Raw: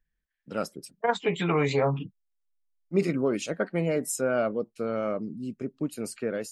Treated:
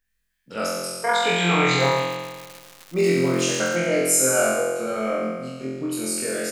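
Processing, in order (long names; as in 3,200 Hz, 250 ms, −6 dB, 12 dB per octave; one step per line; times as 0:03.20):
high-shelf EQ 2,000 Hz +8.5 dB
on a send: flutter between parallel walls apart 3.9 metres, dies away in 1.4 s
0:01.79–0:03.75: on the sum: surface crackle 280 per second −28 dBFS
low-shelf EQ 420 Hz −5 dB
single-tap delay 108 ms −11.5 dB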